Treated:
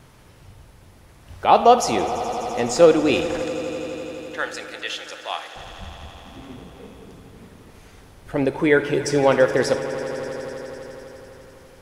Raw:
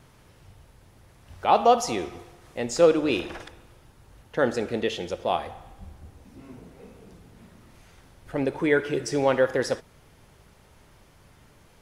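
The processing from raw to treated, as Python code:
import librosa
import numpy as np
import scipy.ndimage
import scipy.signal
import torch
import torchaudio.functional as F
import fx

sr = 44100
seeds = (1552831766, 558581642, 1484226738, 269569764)

y = fx.highpass(x, sr, hz=1300.0, slope=12, at=(3.43, 5.56))
y = fx.echo_swell(y, sr, ms=84, loudest=5, wet_db=-18)
y = y * librosa.db_to_amplitude(5.0)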